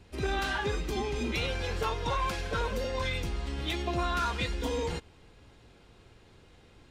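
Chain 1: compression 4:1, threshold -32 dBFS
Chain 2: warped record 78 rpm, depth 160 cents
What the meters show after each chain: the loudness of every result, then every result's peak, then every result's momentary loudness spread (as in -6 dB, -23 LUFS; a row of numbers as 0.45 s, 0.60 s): -36.0 LUFS, -32.0 LUFS; -24.0 dBFS, -22.5 dBFS; 3 LU, 4 LU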